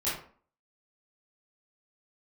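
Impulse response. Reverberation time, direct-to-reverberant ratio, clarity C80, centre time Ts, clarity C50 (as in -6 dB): 0.45 s, -11.5 dB, 8.5 dB, 45 ms, 3.0 dB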